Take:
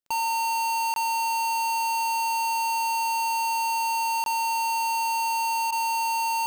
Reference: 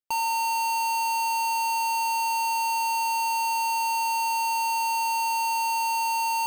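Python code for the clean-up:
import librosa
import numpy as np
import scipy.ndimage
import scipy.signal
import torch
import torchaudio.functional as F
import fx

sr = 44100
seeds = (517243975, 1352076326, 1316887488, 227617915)

y = fx.fix_declick_ar(x, sr, threshold=6.5)
y = fx.fix_interpolate(y, sr, at_s=(0.94, 4.24), length_ms=22.0)
y = fx.fix_interpolate(y, sr, at_s=(5.71,), length_ms=12.0)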